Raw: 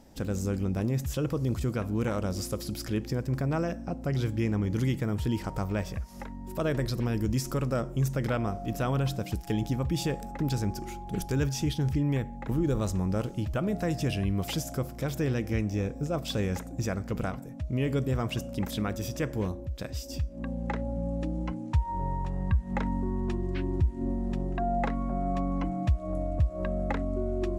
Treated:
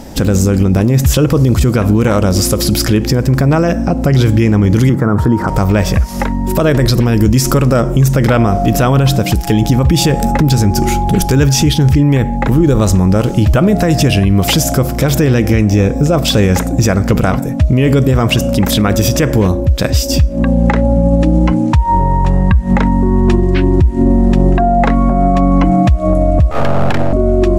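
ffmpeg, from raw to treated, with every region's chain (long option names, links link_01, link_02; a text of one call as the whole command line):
ffmpeg -i in.wav -filter_complex "[0:a]asettb=1/sr,asplit=3[link_01][link_02][link_03];[link_01]atrim=end=4.894[link_04];[link_02]atrim=start=4.89:end=5.48,asetpts=PTS-STARTPTS,afade=type=in:duration=0.004:curve=qsin,afade=type=out:start_time=0.586:duration=0.004:curve=qsin,highpass=100,highshelf=frequency=1900:width_type=q:width=3:gain=-12.5[link_05];[link_03]atrim=start=5.476[link_06];[link_04][link_05]acrossfade=duration=0.004:curve1=hsin:curve2=qsin[link_07];[link_07][link_06]acrossfade=duration=0.004:curve1=qsin:curve2=hsin,asettb=1/sr,asplit=3[link_08][link_09][link_10];[link_08]atrim=end=10.094[link_11];[link_09]atrim=start=10.09:end=11.13,asetpts=PTS-STARTPTS,afade=type=in:duration=0.004:curve=qsin,afade=type=out:start_time=1.036:duration=0.004:curve=qsin,bass=frequency=250:gain=4,treble=frequency=4000:gain=2,asplit=2[link_12][link_13];[link_13]adelay=13,volume=-10.5dB[link_14];[link_12][link_14]amix=inputs=2:normalize=0,atrim=end_sample=45864[link_15];[link_10]atrim=start=11.126[link_16];[link_11][link_15]acrossfade=duration=0.004:curve1=hsin:curve2=qsin[link_17];[link_17][link_16]acrossfade=duration=0.004:curve1=qsin:curve2=hsin,asettb=1/sr,asplit=3[link_18][link_19][link_20];[link_18]atrim=end=26.514[link_21];[link_19]atrim=start=26.51:end=27.13,asetpts=PTS-STARTPTS,afade=type=in:duration=0.004:curve=qsin,afade=type=out:start_time=0.616:duration=0.004:curve=qsin,aecho=1:1:1.3:0.45,atrim=end_sample=27342,aeval=exprs='abs(val(0))':channel_layout=same[link_22];[link_20]atrim=start=27.126[link_23];[link_21][link_22]acrossfade=duration=0.004:curve1=hsin:curve2=qsin[link_24];[link_24][link_23]acrossfade=duration=0.004:curve1=qsin:curve2=hsin,acompressor=threshold=-28dB:ratio=6,alimiter=level_in=25.5dB:limit=-1dB:release=50:level=0:latency=1,volume=-1dB" out.wav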